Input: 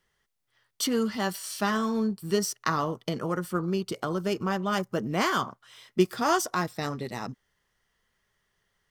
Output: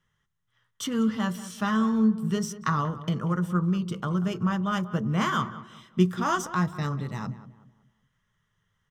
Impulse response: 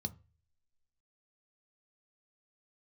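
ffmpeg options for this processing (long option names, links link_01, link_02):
-filter_complex "[0:a]highshelf=frequency=8300:gain=-10,asplit=2[link_01][link_02];[link_02]adelay=188,lowpass=frequency=1800:poles=1,volume=-14dB,asplit=2[link_03][link_04];[link_04]adelay=188,lowpass=frequency=1800:poles=1,volume=0.38,asplit=2[link_05][link_06];[link_06]adelay=188,lowpass=frequency=1800:poles=1,volume=0.38,asplit=2[link_07][link_08];[link_08]adelay=188,lowpass=frequency=1800:poles=1,volume=0.38[link_09];[link_01][link_03][link_05][link_07][link_09]amix=inputs=5:normalize=0,asplit=2[link_10][link_11];[1:a]atrim=start_sample=2205[link_12];[link_11][link_12]afir=irnorm=-1:irlink=0,volume=-6dB[link_13];[link_10][link_13]amix=inputs=2:normalize=0"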